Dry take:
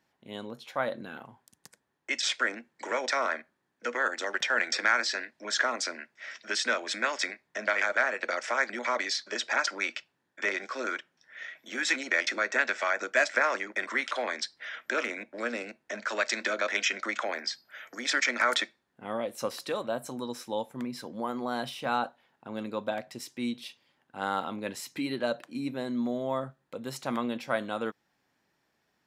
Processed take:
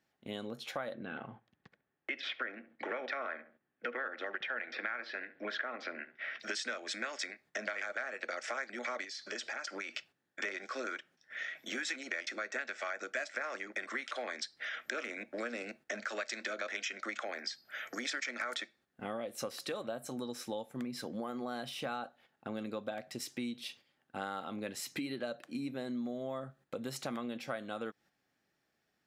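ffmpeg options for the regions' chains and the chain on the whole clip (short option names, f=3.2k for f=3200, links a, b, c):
-filter_complex "[0:a]asettb=1/sr,asplit=3[a][b][c];[a]atrim=end=0.944[d];[b]atrim=start=0.94:end=6.4,asetpts=PTS-STARTPTS,afade=t=in:d=0.004:c=qsin,afade=t=out:st=5.456:d=0.004:c=qsin,lowpass=f=3.2k:w=0.5412,lowpass=f=3.2k:w=1.3066,asplit=2[e][f];[f]adelay=69,lowpass=f=1.2k:p=1,volume=-14dB,asplit=2[g][h];[h]adelay=69,lowpass=f=1.2k:p=1,volume=0.33,asplit=2[i][j];[j]adelay=69,lowpass=f=1.2k:p=1,volume=0.33[k];[e][g][i][k]amix=inputs=4:normalize=0,atrim=end_sample=240786[l];[c]atrim=start=6.396[m];[d][l]acrossfade=d=0.004:c1=hsin:c2=qsin[n];[n][m]acrossfade=d=0.004:c1=qsin:c2=hsin,asettb=1/sr,asplit=3[o][p][q];[o]atrim=end=9.044[r];[p]atrim=start=9.04:end=9.97,asetpts=PTS-STARTPTS,afade=t=in:d=0.004:c=qsin,afade=t=out:st=0.926:d=0.004:c=qsin,bandreject=f=3.8k:w=16,acompressor=threshold=-41dB:ratio=3:attack=3.2:release=140:knee=1:detection=peak[s];[q]atrim=start=9.966[t];[r][s]acrossfade=d=0.004:c1=hsin:c2=qsin[u];[u][t]acrossfade=d=0.004:c1=qsin:c2=hsin,bandreject=f=970:w=5.3,agate=range=-9dB:threshold=-56dB:ratio=16:detection=peak,acompressor=threshold=-41dB:ratio=5,volume=4dB"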